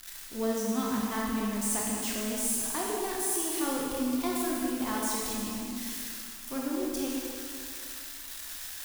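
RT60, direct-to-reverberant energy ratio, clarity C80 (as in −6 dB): 2.4 s, −4.5 dB, 0.0 dB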